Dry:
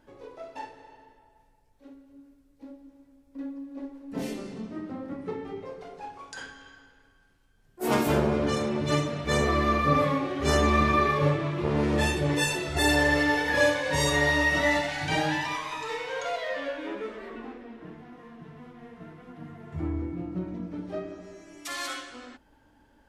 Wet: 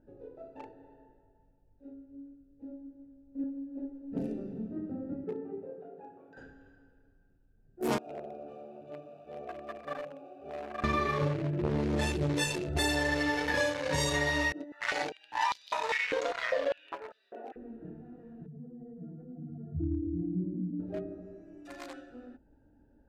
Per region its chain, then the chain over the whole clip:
0:00.58–0:03.44: low-pass filter 9,000 Hz + flutter between parallel walls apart 3.7 metres, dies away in 0.21 s
0:05.24–0:06.37: band-pass filter 210–2,300 Hz + upward compression, threshold −42 dBFS
0:07.98–0:10.84: spike at every zero crossing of −17 dBFS + formant filter a
0:14.52–0:17.56: compressor whose output falls as the input rises −31 dBFS, ratio −0.5 + high-pass on a step sequencer 5 Hz 310–4,100 Hz
0:18.46–0:20.80: expanding power law on the bin magnitudes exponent 2.1 + single-tap delay 109 ms −5 dB
whole clip: adaptive Wiener filter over 41 samples; dynamic equaliser 5,500 Hz, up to +4 dB, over −47 dBFS, Q 0.71; downward compressor, threshold −26 dBFS

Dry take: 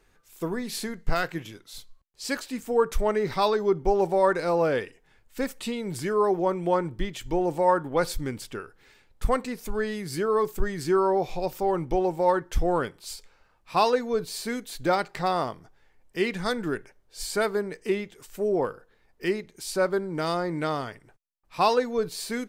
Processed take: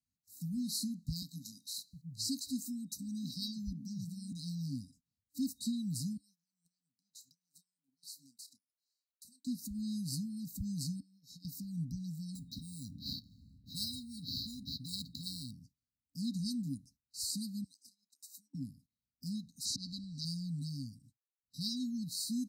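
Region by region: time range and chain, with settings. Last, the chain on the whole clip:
0:01.22–0:04.32: multiband delay without the direct sound highs, lows 710 ms, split 160 Hz + one half of a high-frequency compander encoder only
0:06.17–0:09.47: Bessel high-pass filter 1,100 Hz + downward compressor 2 to 1, threshold −49 dBFS + double-tracking delay 30 ms −12 dB
0:11.00–0:11.45: high-pass filter 460 Hz 6 dB per octave + downward compressor 16 to 1, threshold −37 dBFS
0:12.35–0:15.51: sample-rate reduction 9,000 Hz + high-frequency loss of the air 460 metres + every bin compressed towards the loudest bin 10 to 1
0:17.64–0:18.55: high-pass filter 460 Hz 24 dB per octave + downward compressor 8 to 1, threshold −39 dBFS
0:19.65–0:20.25: volume swells 134 ms + high-frequency loss of the air 220 metres + every bin compressed towards the loudest bin 4 to 1
whole clip: brick-wall band-stop 290–3,800 Hz; high-pass filter 63 Hz 24 dB per octave; noise gate −59 dBFS, range −19 dB; level −3 dB

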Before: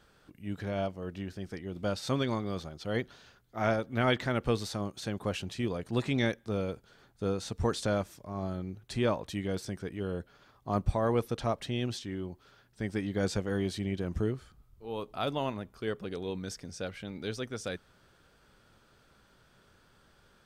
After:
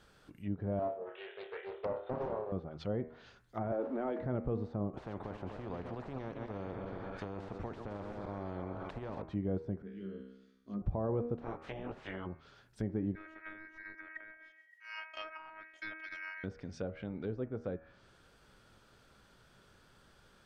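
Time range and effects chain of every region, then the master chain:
0:00.79–0:02.52: linear-phase brick-wall band-pass 370–3,700 Hz + flutter between parallel walls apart 4.8 metres, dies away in 0.39 s + highs frequency-modulated by the lows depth 0.47 ms
0:03.72–0:04.19: converter with a step at zero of −37.5 dBFS + Butterworth high-pass 260 Hz + leveller curve on the samples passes 1
0:04.93–0:09.22: feedback delay that plays each chunk backwards 128 ms, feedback 58%, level −13 dB + every bin compressed towards the loudest bin 4 to 1
0:09.82–0:10.82: parametric band 210 Hz +14.5 dB 0.58 octaves + phaser with its sweep stopped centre 340 Hz, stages 4 + tuned comb filter 65 Hz, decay 0.92 s, mix 90%
0:11.38–0:12.25: ceiling on every frequency bin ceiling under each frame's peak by 28 dB + micro pitch shift up and down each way 26 cents
0:13.15–0:16.44: phases set to zero 318 Hz + ring modulation 1,900 Hz
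whole clip: hum removal 79.34 Hz, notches 34; brickwall limiter −24.5 dBFS; treble cut that deepens with the level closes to 730 Hz, closed at −34.5 dBFS

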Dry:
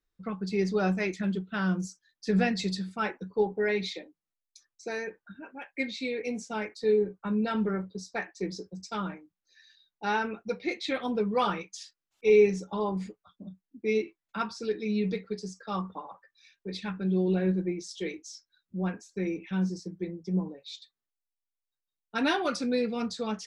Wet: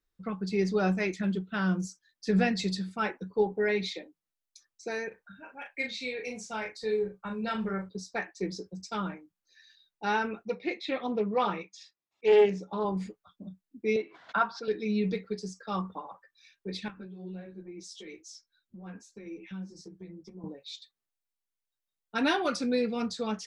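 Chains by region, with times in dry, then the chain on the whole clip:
0:05.08–0:07.89: parametric band 290 Hz −10 dB 1.3 octaves + double-tracking delay 36 ms −5.5 dB
0:10.45–0:12.85: high-frequency loss of the air 120 metres + notch comb filter 1,500 Hz + highs frequency-modulated by the lows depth 0.18 ms
0:13.96–0:14.68: loudspeaker in its box 210–4,000 Hz, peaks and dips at 230 Hz −5 dB, 350 Hz −9 dB, 690 Hz +7 dB, 1,000 Hz +5 dB, 1,500 Hz +7 dB, 2,500 Hz −7 dB + background raised ahead of every attack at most 110 dB per second
0:16.88–0:20.44: downward compressor 4 to 1, threshold −38 dBFS + string-ensemble chorus
whole clip: no processing

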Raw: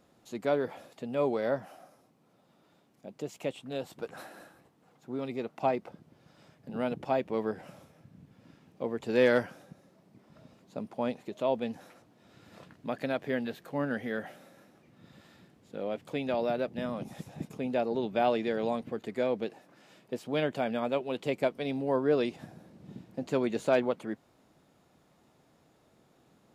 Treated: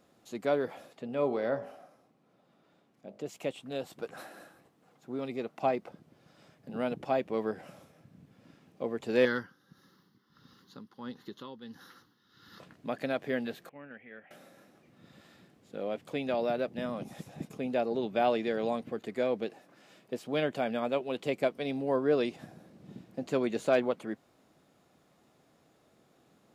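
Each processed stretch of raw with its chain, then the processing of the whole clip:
0:00.92–0:03.26: high-shelf EQ 5,300 Hz −10 dB + hum removal 51.61 Hz, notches 26
0:09.25–0:12.60: amplitude tremolo 1.5 Hz, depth 70% + phaser with its sweep stopped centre 2,400 Hz, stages 6 + one half of a high-frequency compander encoder only
0:13.69–0:14.31: noise gate −34 dBFS, range −6 dB + downward compressor 2 to 1, threshold −34 dBFS + transistor ladder low-pass 2,600 Hz, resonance 75%
whole clip: low-shelf EQ 110 Hz −6.5 dB; notch filter 910 Hz, Q 15

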